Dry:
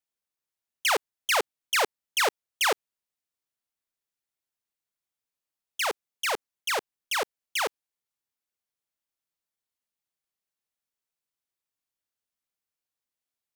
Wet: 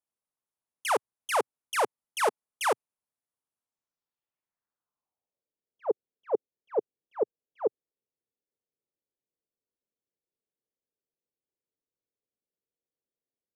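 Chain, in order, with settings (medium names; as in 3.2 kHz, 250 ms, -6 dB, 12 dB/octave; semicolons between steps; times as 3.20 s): 2.22–2.66 s: comb 4.7 ms, depth 34%; low-pass sweep 10 kHz -> 450 Hz, 3.56–5.52 s; graphic EQ 125/250/500/1000/2000/4000/8000 Hz +5/+4/+4/+6/-3/-7/-6 dB; trim -5 dB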